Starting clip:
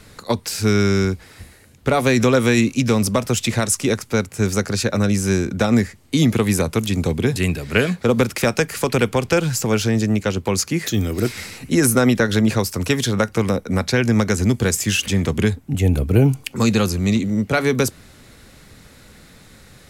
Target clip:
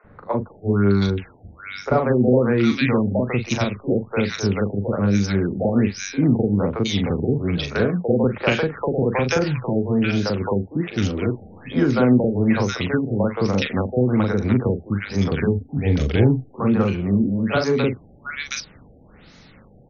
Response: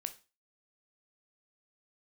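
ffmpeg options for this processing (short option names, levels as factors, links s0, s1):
-filter_complex "[0:a]lowshelf=f=120:g=-5,asplit=2[s0][s1];[s1]adelay=40,volume=0.447[s2];[s0][s2]amix=inputs=2:normalize=0,acrossover=split=450|1600[s3][s4][s5];[s3]adelay=40[s6];[s5]adelay=720[s7];[s6][s4][s7]amix=inputs=3:normalize=0,afftfilt=real='re*lt(b*sr/1024,800*pow(6900/800,0.5+0.5*sin(2*PI*1.2*pts/sr)))':imag='im*lt(b*sr/1024,800*pow(6900/800,0.5+0.5*sin(2*PI*1.2*pts/sr)))':win_size=1024:overlap=0.75"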